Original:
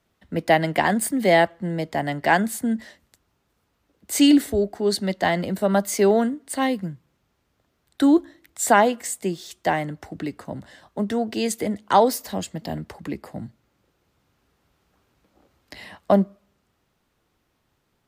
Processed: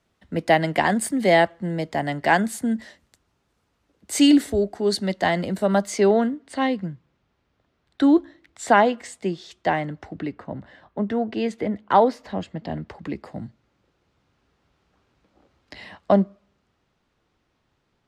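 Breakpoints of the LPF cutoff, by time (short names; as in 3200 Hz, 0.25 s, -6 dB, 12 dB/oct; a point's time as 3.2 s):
5.72 s 9800 Hz
6.12 s 4400 Hz
10.02 s 4400 Hz
10.42 s 2600 Hz
12.48 s 2600 Hz
13.25 s 5800 Hz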